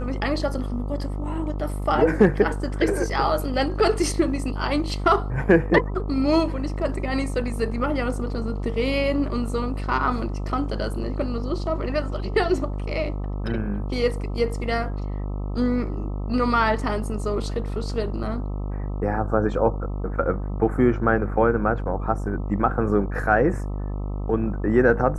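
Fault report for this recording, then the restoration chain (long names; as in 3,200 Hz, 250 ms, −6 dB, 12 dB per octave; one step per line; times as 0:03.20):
mains buzz 50 Hz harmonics 26 −28 dBFS
0:18.23–0:18.24: drop-out 5.2 ms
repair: hum removal 50 Hz, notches 26
repair the gap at 0:18.23, 5.2 ms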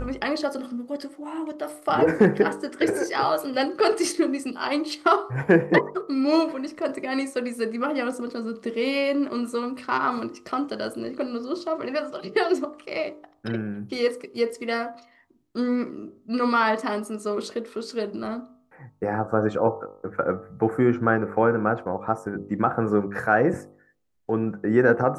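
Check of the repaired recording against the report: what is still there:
none of them is left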